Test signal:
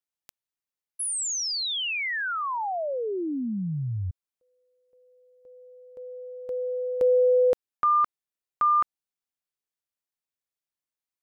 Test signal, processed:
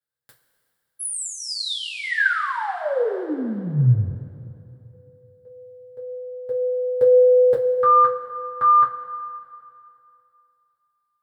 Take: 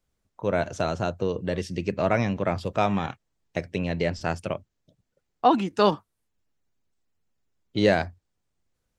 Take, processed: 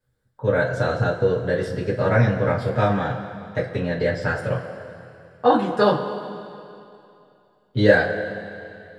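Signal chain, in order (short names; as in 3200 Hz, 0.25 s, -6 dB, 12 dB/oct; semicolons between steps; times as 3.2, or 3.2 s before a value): thirty-one-band EQ 125 Hz +11 dB, 500 Hz +8 dB, 1600 Hz +12 dB, 2500 Hz -9 dB, 6300 Hz -10 dB; two-slope reverb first 0.21 s, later 2.7 s, from -18 dB, DRR -6.5 dB; gain -5.5 dB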